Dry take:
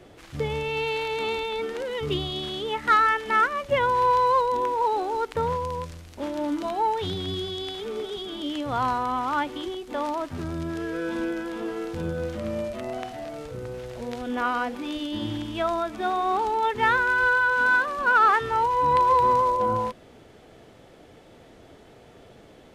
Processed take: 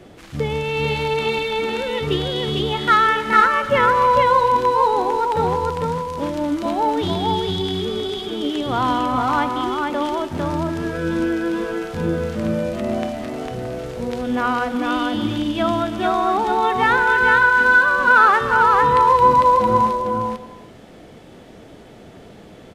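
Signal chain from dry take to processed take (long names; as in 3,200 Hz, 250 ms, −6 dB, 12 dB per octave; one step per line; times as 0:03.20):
parametric band 200 Hz +6.5 dB 0.71 octaves
single-tap delay 451 ms −3 dB
on a send at −13 dB: convolution reverb, pre-delay 3 ms
on the sum: level +4.5 dB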